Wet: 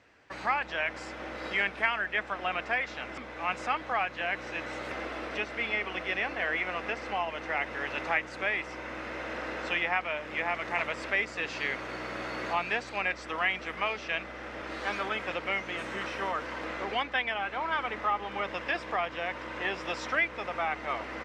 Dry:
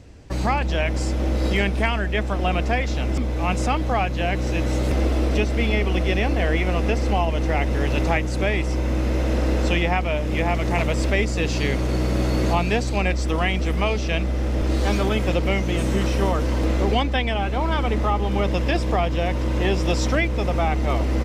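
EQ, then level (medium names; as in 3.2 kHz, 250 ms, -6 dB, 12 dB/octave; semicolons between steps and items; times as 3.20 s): band-pass filter 1.6 kHz, Q 1.4; 0.0 dB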